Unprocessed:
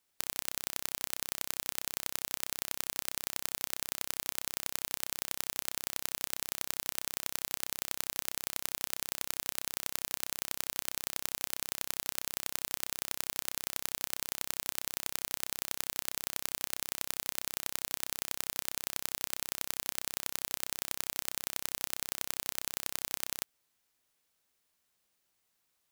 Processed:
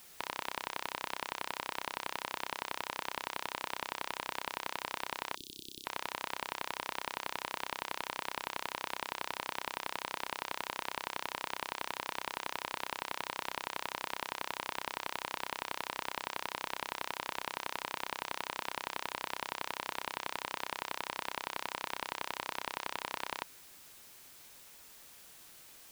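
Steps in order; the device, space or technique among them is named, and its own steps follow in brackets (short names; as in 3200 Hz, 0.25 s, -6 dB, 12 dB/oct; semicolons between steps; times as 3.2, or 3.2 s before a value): drive-through speaker (BPF 390–3200 Hz; bell 970 Hz +9 dB 0.34 oct; hard clip -25 dBFS, distortion -12 dB; white noise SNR 14 dB); 5.35–5.85 elliptic band-stop 350–3500 Hz, stop band 40 dB; gain +5.5 dB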